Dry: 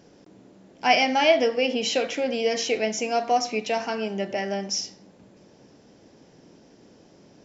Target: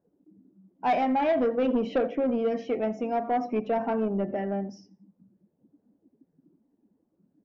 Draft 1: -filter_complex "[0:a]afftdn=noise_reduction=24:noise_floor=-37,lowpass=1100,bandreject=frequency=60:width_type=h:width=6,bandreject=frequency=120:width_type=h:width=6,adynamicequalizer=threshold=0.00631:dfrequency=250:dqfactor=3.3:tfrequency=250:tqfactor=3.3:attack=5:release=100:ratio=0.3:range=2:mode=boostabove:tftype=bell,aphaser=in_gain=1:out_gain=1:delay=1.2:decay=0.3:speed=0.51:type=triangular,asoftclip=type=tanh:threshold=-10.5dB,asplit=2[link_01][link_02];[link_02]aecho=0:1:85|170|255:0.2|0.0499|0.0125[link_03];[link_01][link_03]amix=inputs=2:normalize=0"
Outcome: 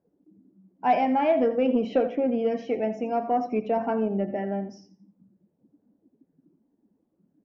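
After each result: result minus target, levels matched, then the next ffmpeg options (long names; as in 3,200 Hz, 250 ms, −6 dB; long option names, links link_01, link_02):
soft clipping: distortion −11 dB; echo-to-direct +8.5 dB
-filter_complex "[0:a]afftdn=noise_reduction=24:noise_floor=-37,lowpass=1100,bandreject=frequency=60:width_type=h:width=6,bandreject=frequency=120:width_type=h:width=6,adynamicequalizer=threshold=0.00631:dfrequency=250:dqfactor=3.3:tfrequency=250:tqfactor=3.3:attack=5:release=100:ratio=0.3:range=2:mode=boostabove:tftype=bell,aphaser=in_gain=1:out_gain=1:delay=1.2:decay=0.3:speed=0.51:type=triangular,asoftclip=type=tanh:threshold=-18.5dB,asplit=2[link_01][link_02];[link_02]aecho=0:1:85|170|255:0.2|0.0499|0.0125[link_03];[link_01][link_03]amix=inputs=2:normalize=0"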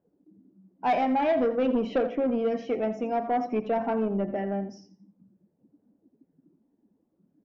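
echo-to-direct +8.5 dB
-filter_complex "[0:a]afftdn=noise_reduction=24:noise_floor=-37,lowpass=1100,bandreject=frequency=60:width_type=h:width=6,bandreject=frequency=120:width_type=h:width=6,adynamicequalizer=threshold=0.00631:dfrequency=250:dqfactor=3.3:tfrequency=250:tqfactor=3.3:attack=5:release=100:ratio=0.3:range=2:mode=boostabove:tftype=bell,aphaser=in_gain=1:out_gain=1:delay=1.2:decay=0.3:speed=0.51:type=triangular,asoftclip=type=tanh:threshold=-18.5dB,asplit=2[link_01][link_02];[link_02]aecho=0:1:85|170:0.075|0.0187[link_03];[link_01][link_03]amix=inputs=2:normalize=0"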